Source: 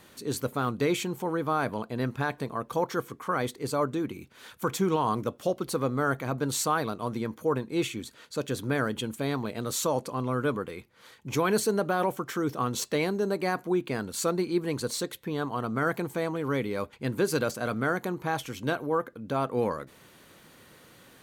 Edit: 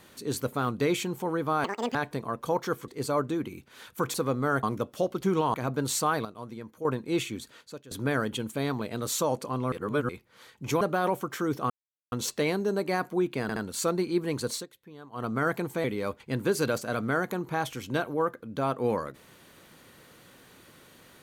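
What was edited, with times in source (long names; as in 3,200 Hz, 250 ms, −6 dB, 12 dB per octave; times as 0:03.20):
0:01.64–0:02.22: play speed 187%
0:03.15–0:03.52: remove
0:04.78–0:05.09: swap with 0:05.69–0:06.18
0:06.89–0:07.49: clip gain −9 dB
0:08.19–0:08.55: fade out quadratic, to −19.5 dB
0:10.36–0:10.73: reverse
0:11.45–0:11.77: remove
0:12.66: splice in silence 0.42 s
0:13.96: stutter 0.07 s, 3 plays
0:14.94–0:15.64: duck −16 dB, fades 0.12 s
0:16.24–0:16.57: remove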